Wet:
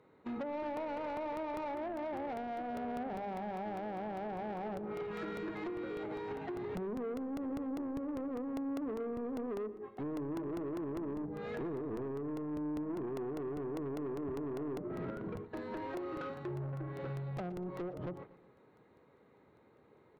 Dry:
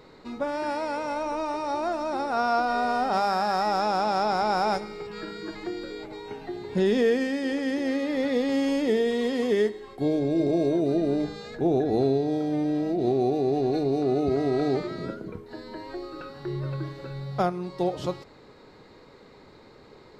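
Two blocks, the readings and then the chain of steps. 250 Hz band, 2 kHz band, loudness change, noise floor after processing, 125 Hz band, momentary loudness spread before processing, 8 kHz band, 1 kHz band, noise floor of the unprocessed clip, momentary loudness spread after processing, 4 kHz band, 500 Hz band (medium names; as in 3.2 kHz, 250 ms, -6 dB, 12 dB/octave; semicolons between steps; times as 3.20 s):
-11.5 dB, -15.0 dB, -13.5 dB, -65 dBFS, -10.5 dB, 13 LU, no reading, -15.0 dB, -51 dBFS, 3 LU, -21.5 dB, -13.5 dB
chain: local Wiener filter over 9 samples; low-pass that closes with the level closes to 490 Hz, closed at -24 dBFS; high-pass 69 Hz 24 dB/octave; gate -42 dBFS, range -16 dB; compression 5:1, threshold -36 dBFS, peak gain reduction 14.5 dB; saturation -38.5 dBFS, distortion -12 dB; feedback delay 120 ms, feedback 48%, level -16 dB; crackling interface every 0.20 s, samples 64, repeat, from 0.77 s; trim +3 dB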